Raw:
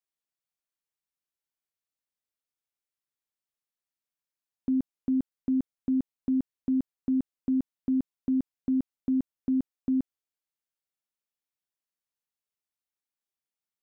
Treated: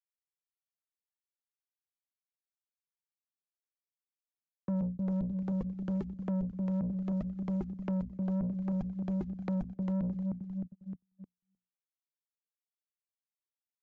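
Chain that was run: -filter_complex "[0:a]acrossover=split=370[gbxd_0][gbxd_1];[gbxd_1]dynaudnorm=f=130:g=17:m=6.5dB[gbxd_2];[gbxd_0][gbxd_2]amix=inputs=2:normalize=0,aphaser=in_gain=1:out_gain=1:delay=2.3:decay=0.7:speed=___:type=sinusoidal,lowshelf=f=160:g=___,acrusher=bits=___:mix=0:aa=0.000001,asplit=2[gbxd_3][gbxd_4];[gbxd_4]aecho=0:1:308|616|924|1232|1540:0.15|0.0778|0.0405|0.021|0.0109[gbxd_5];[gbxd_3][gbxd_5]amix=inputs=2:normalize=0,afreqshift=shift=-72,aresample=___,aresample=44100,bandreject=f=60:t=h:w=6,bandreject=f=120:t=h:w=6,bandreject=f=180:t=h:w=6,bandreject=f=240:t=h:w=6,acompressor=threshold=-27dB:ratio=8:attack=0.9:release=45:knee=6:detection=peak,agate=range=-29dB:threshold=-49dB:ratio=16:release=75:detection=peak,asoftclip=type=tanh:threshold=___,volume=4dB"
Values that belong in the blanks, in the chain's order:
1.9, -2, 10, 16000, -33dB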